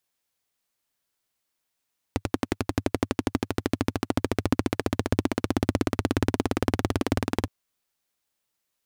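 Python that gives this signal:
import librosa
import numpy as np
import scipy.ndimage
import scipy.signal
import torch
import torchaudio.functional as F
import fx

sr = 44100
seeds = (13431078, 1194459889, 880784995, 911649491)

y = fx.engine_single_rev(sr, seeds[0], length_s=5.32, rpm=1300, resonances_hz=(100.0, 260.0), end_rpm=2300)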